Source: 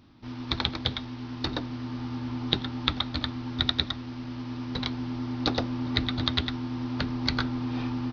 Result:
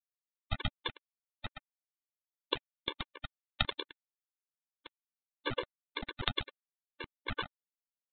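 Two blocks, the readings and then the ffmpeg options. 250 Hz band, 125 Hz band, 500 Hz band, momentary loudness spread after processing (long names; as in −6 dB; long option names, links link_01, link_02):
−20.5 dB, −15.0 dB, −7.0 dB, 15 LU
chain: -af "agate=range=-18dB:threshold=-26dB:ratio=16:detection=peak,equalizer=frequency=260:width=1.4:gain=-13.5,acompressor=threshold=-29dB:ratio=8,aresample=8000,acrusher=bits=4:dc=4:mix=0:aa=0.000001,aresample=44100,afftfilt=real='re*gt(sin(2*PI*7.8*pts/sr)*(1-2*mod(floor(b*sr/1024/300),2)),0)':imag='im*gt(sin(2*PI*7.8*pts/sr)*(1-2*mod(floor(b*sr/1024/300),2)),0)':win_size=1024:overlap=0.75,volume=8.5dB"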